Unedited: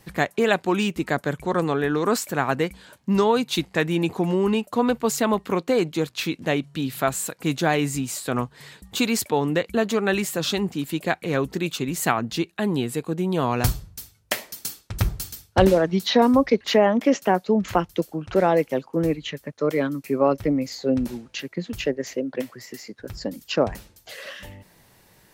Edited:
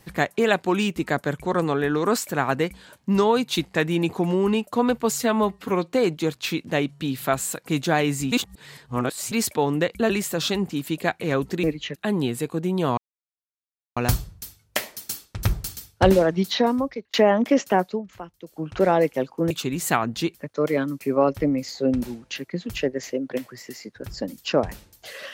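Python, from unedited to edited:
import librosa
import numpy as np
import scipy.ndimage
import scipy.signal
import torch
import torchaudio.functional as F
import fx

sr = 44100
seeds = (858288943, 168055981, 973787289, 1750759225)

y = fx.edit(x, sr, fx.stretch_span(start_s=5.14, length_s=0.51, factor=1.5),
    fx.reverse_span(start_s=8.06, length_s=1.0),
    fx.cut(start_s=9.84, length_s=0.28),
    fx.swap(start_s=11.66, length_s=0.84, other_s=19.06, other_length_s=0.32),
    fx.insert_silence(at_s=13.52, length_s=0.99),
    fx.fade_out_span(start_s=15.96, length_s=0.73),
    fx.fade_down_up(start_s=17.41, length_s=0.78, db=-16.5, fade_s=0.17), tone=tone)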